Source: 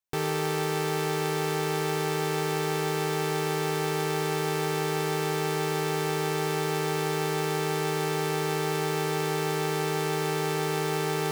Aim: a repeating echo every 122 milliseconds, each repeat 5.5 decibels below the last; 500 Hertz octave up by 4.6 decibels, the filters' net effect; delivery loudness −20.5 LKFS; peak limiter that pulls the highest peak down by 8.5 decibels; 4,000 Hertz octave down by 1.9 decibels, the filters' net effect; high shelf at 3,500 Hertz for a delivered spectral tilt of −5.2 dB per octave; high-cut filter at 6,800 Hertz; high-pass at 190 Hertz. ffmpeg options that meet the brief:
ffmpeg -i in.wav -af "highpass=190,lowpass=6800,equalizer=frequency=500:width_type=o:gain=6,highshelf=frequency=3500:gain=6.5,equalizer=frequency=4000:width_type=o:gain=-6.5,alimiter=limit=-21dB:level=0:latency=1,aecho=1:1:122|244|366|488|610|732|854:0.531|0.281|0.149|0.079|0.0419|0.0222|0.0118,volume=9dB" out.wav

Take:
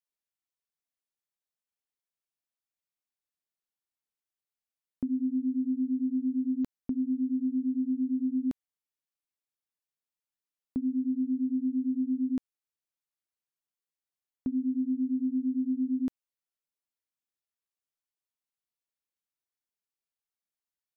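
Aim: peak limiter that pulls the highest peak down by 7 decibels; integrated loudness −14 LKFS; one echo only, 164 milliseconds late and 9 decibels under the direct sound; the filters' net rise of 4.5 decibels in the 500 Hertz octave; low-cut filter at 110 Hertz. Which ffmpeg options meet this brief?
ffmpeg -i in.wav -af "highpass=110,equalizer=frequency=500:width_type=o:gain=7.5,alimiter=level_in=4dB:limit=-24dB:level=0:latency=1,volume=-4dB,aecho=1:1:164:0.355,volume=19.5dB" out.wav

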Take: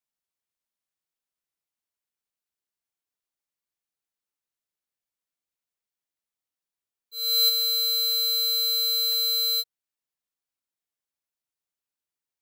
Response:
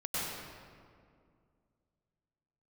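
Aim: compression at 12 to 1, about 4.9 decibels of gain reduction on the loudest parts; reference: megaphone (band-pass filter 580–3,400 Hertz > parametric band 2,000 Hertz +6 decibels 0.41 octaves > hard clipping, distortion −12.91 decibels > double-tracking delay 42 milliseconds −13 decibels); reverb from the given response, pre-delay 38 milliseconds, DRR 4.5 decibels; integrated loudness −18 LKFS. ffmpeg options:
-filter_complex "[0:a]acompressor=threshold=-25dB:ratio=12,asplit=2[link_01][link_02];[1:a]atrim=start_sample=2205,adelay=38[link_03];[link_02][link_03]afir=irnorm=-1:irlink=0,volume=-10.5dB[link_04];[link_01][link_04]amix=inputs=2:normalize=0,highpass=580,lowpass=3400,equalizer=frequency=2000:width_type=o:width=0.41:gain=6,asoftclip=type=hard:threshold=-31.5dB,asplit=2[link_05][link_06];[link_06]adelay=42,volume=-13dB[link_07];[link_05][link_07]amix=inputs=2:normalize=0,volume=11dB"

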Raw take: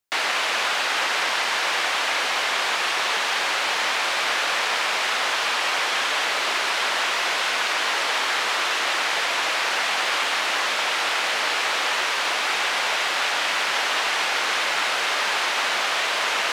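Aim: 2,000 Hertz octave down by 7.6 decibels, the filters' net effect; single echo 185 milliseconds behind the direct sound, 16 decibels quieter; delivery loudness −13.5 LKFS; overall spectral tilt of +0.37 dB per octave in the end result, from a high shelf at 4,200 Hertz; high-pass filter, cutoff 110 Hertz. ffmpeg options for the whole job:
ffmpeg -i in.wav -af "highpass=110,equalizer=frequency=2000:width_type=o:gain=-8,highshelf=frequency=4200:gain=-8,aecho=1:1:185:0.158,volume=13dB" out.wav

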